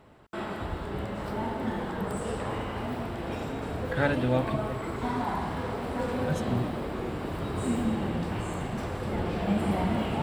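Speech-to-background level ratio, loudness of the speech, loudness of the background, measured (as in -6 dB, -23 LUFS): 0.5 dB, -31.5 LUFS, -32.0 LUFS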